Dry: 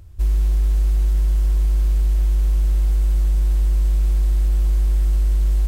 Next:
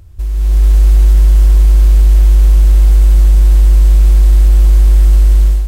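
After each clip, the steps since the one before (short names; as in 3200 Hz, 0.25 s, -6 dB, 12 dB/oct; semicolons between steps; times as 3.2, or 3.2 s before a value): limiter -17 dBFS, peak gain reduction 6 dB; AGC gain up to 12 dB; gain +4 dB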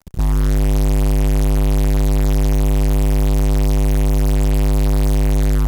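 fuzz box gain 30 dB, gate -33 dBFS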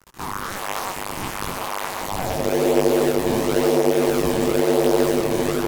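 high-pass sweep 1100 Hz -> 410 Hz, 1.93–2.63; in parallel at -3.5 dB: decimation with a swept rate 37×, swing 160% 0.98 Hz; on the sum: detuned doubles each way 49 cents; gain +4 dB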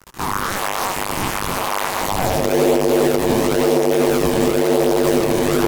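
limiter -13.5 dBFS, peak gain reduction 9 dB; gain +7 dB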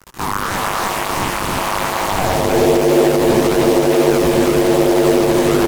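echo 0.314 s -3.5 dB; slew limiter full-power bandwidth 670 Hz; gain +1.5 dB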